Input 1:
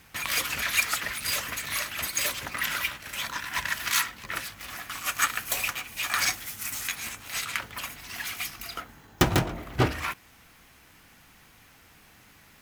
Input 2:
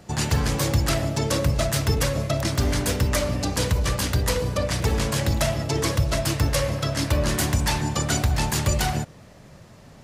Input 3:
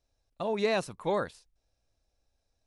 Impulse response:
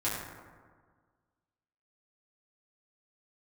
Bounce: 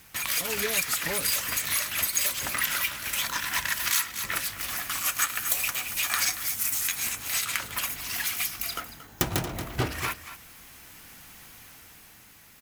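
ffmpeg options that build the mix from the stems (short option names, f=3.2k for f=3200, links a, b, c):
-filter_complex "[0:a]dynaudnorm=f=160:g=11:m=5dB,highshelf=f=5.6k:g=10,volume=-1.5dB,asplit=2[a][b];[b]volume=-15dB[c];[2:a]equalizer=f=210:w=1.5:g=9.5,aecho=1:1:7:0.65,volume=-7dB[d];[c]aecho=0:1:229:1[e];[a][d][e]amix=inputs=3:normalize=0,acompressor=threshold=-26dB:ratio=2.5"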